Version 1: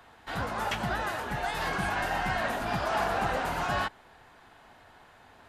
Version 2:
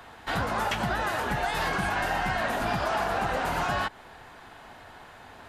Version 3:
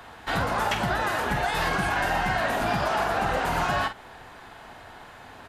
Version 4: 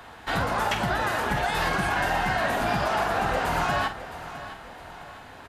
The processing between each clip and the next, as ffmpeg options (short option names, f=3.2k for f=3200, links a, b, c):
-af "acompressor=threshold=-32dB:ratio=6,volume=7.5dB"
-filter_complex "[0:a]asplit=2[a][b];[b]adelay=48,volume=-9.5dB[c];[a][c]amix=inputs=2:normalize=0,volume=2dB"
-af "aecho=1:1:661|1322|1983|2644:0.2|0.0818|0.0335|0.0138"